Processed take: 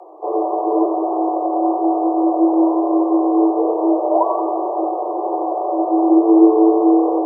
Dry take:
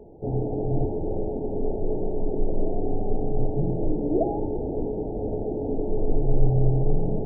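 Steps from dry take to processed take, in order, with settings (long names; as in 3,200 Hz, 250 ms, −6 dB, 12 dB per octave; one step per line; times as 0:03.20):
frequency shifter +310 Hz
feedback echo with a high-pass in the loop 90 ms, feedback 77%, high-pass 360 Hz, level −9 dB
level +6 dB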